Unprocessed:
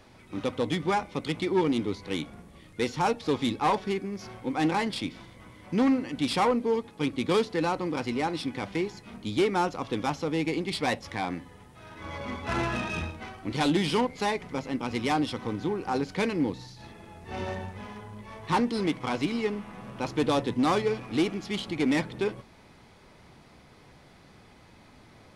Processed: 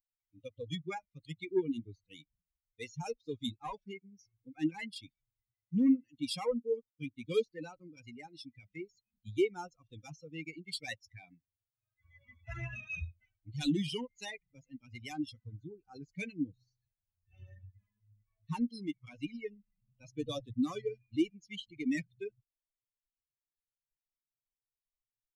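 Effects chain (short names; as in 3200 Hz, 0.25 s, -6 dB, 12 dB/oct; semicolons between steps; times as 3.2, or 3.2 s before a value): per-bin expansion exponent 3; band shelf 970 Hz -12 dB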